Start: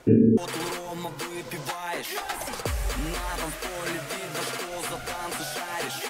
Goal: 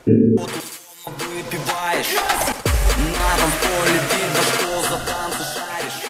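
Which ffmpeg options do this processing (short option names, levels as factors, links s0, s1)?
-filter_complex "[0:a]asettb=1/sr,asplit=3[s0][s1][s2];[s0]atrim=end=0.604[s3];[s1]atrim=start=0.6:end=1.07,asetpts=PTS-STARTPTS,afade=t=in:d=0.004:c=qsin,afade=t=out:st=0.466:d=0.004:c=qsin,aderivative[s4];[s2]atrim=start=1.066[s5];[s3][s4]acrossfade=d=0.004:c1=hsin:c2=qsin[s6];[s6][s5]acrossfade=d=0.004:c1=qsin:c2=hsin,asettb=1/sr,asplit=3[s7][s8][s9];[s7]atrim=end=2.524[s10];[s8]atrim=start=2.52:end=3.2,asetpts=PTS-STARTPTS,afade=t=in:d=0.004:c=qsin,afade=t=out:st=0.676:d=0.004:c=qsin,agate=range=0.0224:threshold=0.0631:ratio=3:detection=peak[s11];[s9]atrim=start=3.196[s12];[s10][s11]acrossfade=d=0.004:c1=hsin:c2=qsin[s13];[s13][s12]acrossfade=d=0.004:c1=qsin:c2=hsin,dynaudnorm=f=270:g=11:m=2.99,aecho=1:1:82|164|246|328:0.211|0.0909|0.0391|0.0168,aresample=32000,aresample=44100,asettb=1/sr,asplit=3[s14][s15][s16];[s14]atrim=end=4.644[s17];[s15]atrim=start=4.64:end=5.7,asetpts=PTS-STARTPTS,afade=t=in:d=0.004:c=qsin,afade=t=out:st=1.056:d=0.004:c=qsin,asuperstop=centerf=2300:order=8:qfactor=4.9[s18];[s16]atrim=start=5.696[s19];[s17][s18]acrossfade=d=0.004:c1=hsin:c2=qsin[s20];[s20][s19]acrossfade=d=0.004:c1=qsin:c2=hsin,volume=1.68"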